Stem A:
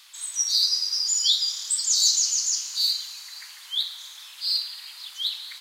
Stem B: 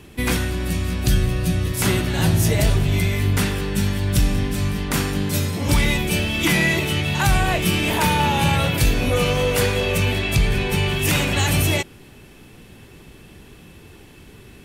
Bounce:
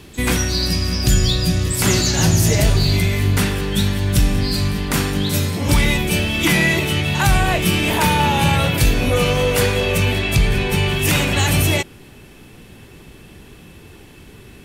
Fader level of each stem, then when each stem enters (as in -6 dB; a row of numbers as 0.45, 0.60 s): -2.0, +2.5 dB; 0.00, 0.00 s